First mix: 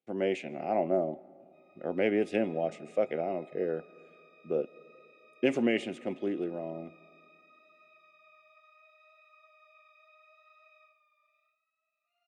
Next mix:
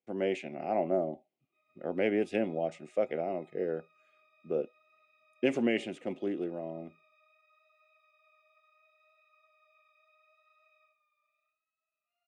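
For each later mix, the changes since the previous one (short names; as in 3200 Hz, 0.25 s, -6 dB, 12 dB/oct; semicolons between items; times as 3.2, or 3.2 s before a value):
background -5.5 dB; reverb: off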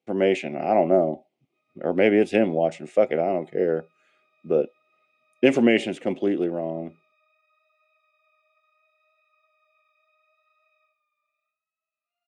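speech +10.5 dB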